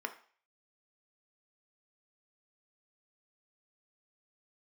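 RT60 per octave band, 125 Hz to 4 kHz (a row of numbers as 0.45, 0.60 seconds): 0.35, 0.35, 0.45, 0.45, 0.50, 0.50 seconds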